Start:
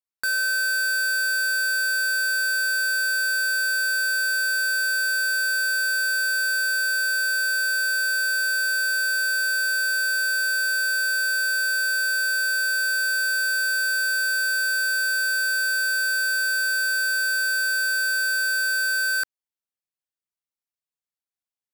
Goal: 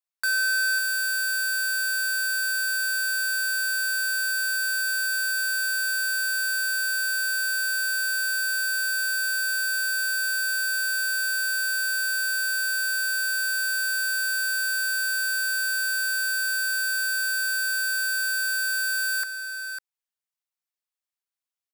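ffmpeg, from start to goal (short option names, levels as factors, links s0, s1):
-filter_complex "[0:a]highpass=680,asplit=2[s0][s1];[s1]aecho=0:1:551:0.316[s2];[s0][s2]amix=inputs=2:normalize=0"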